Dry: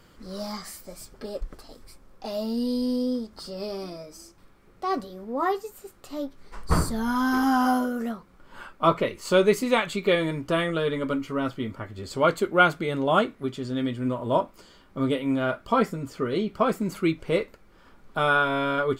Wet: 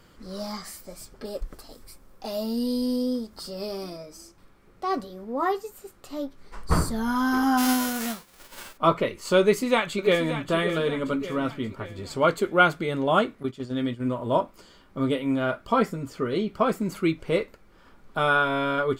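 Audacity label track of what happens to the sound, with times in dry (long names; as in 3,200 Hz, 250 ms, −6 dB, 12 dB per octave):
1.250000	3.970000	high-shelf EQ 9,300 Hz +10 dB
7.570000	8.760000	spectral envelope flattened exponent 0.3
9.400000	10.500000	delay throw 580 ms, feedback 50%, level −10 dB
13.430000	14.080000	noise gate −33 dBFS, range −9 dB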